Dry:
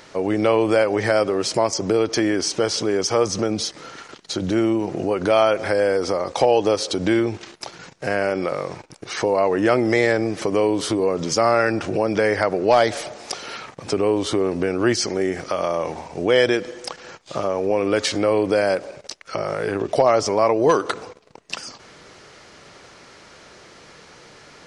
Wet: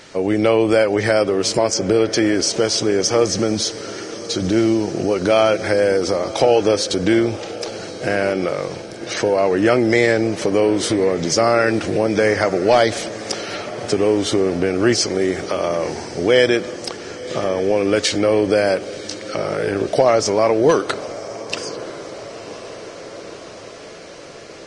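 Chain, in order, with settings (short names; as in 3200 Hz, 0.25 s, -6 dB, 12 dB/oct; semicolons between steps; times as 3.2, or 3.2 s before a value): bell 1000 Hz -6 dB 0.78 oct; diffused feedback echo 1.053 s, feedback 66%, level -15.5 dB; gain +3.5 dB; Vorbis 32 kbps 22050 Hz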